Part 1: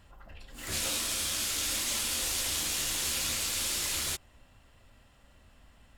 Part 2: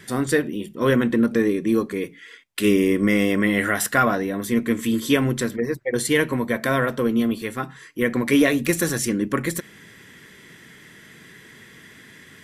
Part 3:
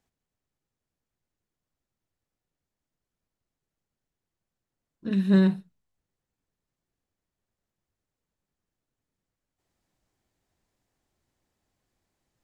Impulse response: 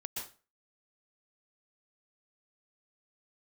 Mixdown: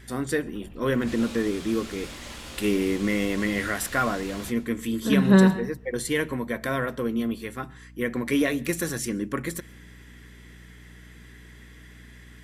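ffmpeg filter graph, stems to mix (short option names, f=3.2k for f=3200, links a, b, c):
-filter_complex "[0:a]lowpass=f=1.2k:p=1,adelay=350,volume=-1dB,asplit=2[a][b];[b]volume=-10dB[c];[1:a]volume=-6.5dB,asplit=2[d][e];[e]volume=-23.5dB[f];[2:a]equalizer=f=1k:t=o:w=1.8:g=10,volume=1dB,asplit=2[g][h];[h]volume=-10dB[i];[3:a]atrim=start_sample=2205[j];[c][f][i]amix=inputs=3:normalize=0[k];[k][j]afir=irnorm=-1:irlink=0[l];[a][d][g][l]amix=inputs=4:normalize=0,aeval=exprs='val(0)+0.00447*(sin(2*PI*60*n/s)+sin(2*PI*2*60*n/s)/2+sin(2*PI*3*60*n/s)/3+sin(2*PI*4*60*n/s)/4+sin(2*PI*5*60*n/s)/5)':c=same"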